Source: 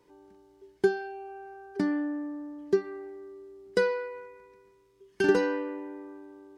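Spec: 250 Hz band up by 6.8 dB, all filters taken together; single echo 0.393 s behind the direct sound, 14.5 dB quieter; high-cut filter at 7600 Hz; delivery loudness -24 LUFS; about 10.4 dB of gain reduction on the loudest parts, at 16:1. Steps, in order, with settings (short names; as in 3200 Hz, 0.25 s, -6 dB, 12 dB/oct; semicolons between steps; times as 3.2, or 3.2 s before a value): LPF 7600 Hz; bell 250 Hz +9 dB; compressor 16:1, threshold -24 dBFS; echo 0.393 s -14.5 dB; gain +8.5 dB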